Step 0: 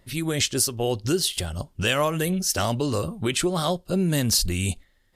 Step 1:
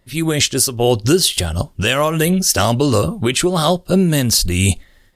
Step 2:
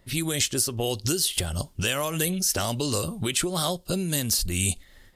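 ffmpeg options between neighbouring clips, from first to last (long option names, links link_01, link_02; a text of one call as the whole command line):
ffmpeg -i in.wav -af "dynaudnorm=framelen=110:gausssize=3:maxgain=16dB,volume=-1dB" out.wav
ffmpeg -i in.wav -filter_complex "[0:a]acrossover=split=3200|7900[link_01][link_02][link_03];[link_01]acompressor=threshold=-28dB:ratio=4[link_04];[link_02]acompressor=threshold=-31dB:ratio=4[link_05];[link_03]acompressor=threshold=-27dB:ratio=4[link_06];[link_04][link_05][link_06]amix=inputs=3:normalize=0" out.wav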